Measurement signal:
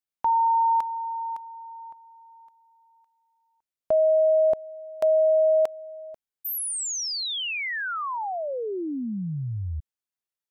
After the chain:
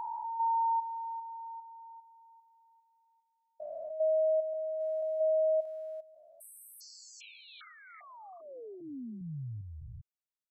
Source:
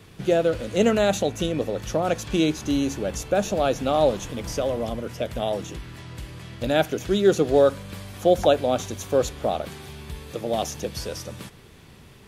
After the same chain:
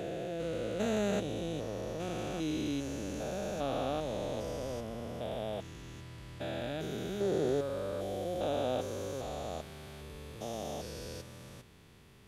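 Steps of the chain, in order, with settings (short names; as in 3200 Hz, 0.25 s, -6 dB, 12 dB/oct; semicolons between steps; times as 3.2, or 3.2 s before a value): stepped spectrum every 0.4 s; gain -8 dB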